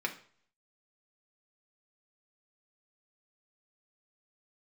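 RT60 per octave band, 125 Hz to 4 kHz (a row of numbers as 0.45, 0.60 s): 0.65, 0.50, 0.50, 0.50, 0.45, 0.45 s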